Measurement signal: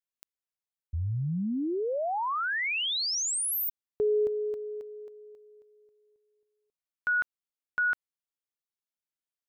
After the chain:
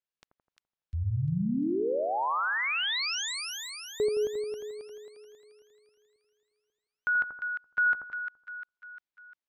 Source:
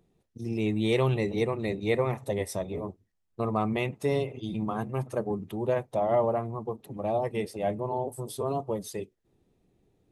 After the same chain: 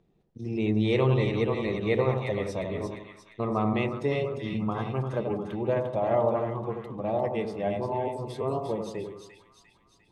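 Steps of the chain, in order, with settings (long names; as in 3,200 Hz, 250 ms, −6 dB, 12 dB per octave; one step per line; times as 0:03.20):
low-pass filter 4,500 Hz 12 dB per octave
dynamic equaliser 700 Hz, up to −3 dB, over −44 dBFS, Q 7.7
echo with a time of its own for lows and highs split 1,300 Hz, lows 84 ms, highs 350 ms, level −5 dB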